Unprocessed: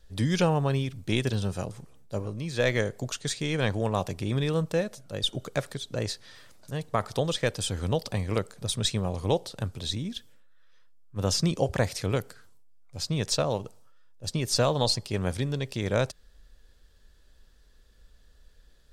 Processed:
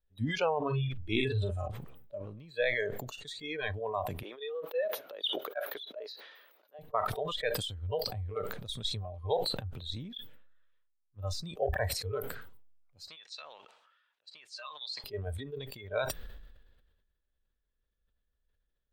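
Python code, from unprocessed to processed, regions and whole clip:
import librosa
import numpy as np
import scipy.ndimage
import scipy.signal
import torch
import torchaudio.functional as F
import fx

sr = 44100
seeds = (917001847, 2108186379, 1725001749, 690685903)

y = fx.chain(x, sr, fx.lowpass(hz=10000.0, slope=12),
    fx.doubler(ms=46.0, db=-6.5),
    fx.env_flatten(amount_pct=50), at=(0.57, 1.68))
y = fx.chain(y, sr, fx.highpass(hz=400.0, slope=24),
    fx.peak_eq(hz=8000.0, db=-14.5, octaves=0.35), at=(4.23, 6.79))
y = fx.chain(y, sr, fx.highpass(hz=1500.0, slope=12),
    fx.air_absorb(metres=81.0), at=(13.08, 15.04))
y = fx.noise_reduce_blind(y, sr, reduce_db=22)
y = fx.band_shelf(y, sr, hz=7700.0, db=-16.0, octaves=1.7)
y = fx.sustainer(y, sr, db_per_s=44.0)
y = y * librosa.db_to_amplitude(-3.5)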